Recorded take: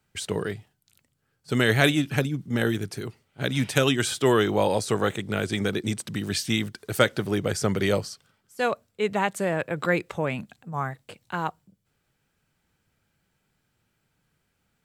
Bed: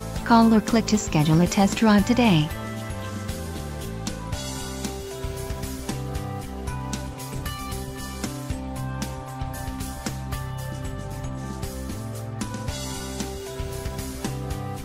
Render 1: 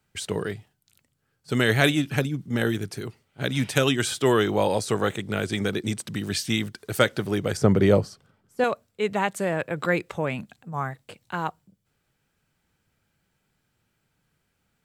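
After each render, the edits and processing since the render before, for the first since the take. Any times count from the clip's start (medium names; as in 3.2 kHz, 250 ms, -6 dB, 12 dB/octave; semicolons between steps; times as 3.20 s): 7.57–8.64 s: tilt shelf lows +7 dB, about 1.4 kHz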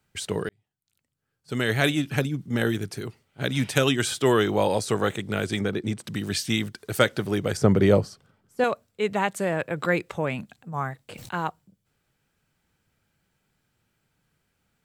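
0.49–2.27 s: fade in; 5.61–6.04 s: treble shelf 3.1 kHz -10 dB; 11.04–11.46 s: decay stretcher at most 22 dB/s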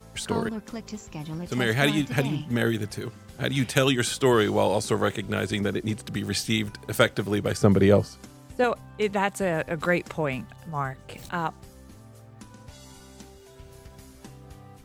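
add bed -16 dB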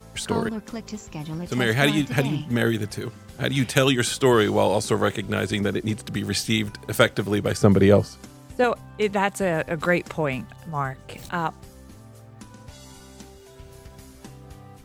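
trim +2.5 dB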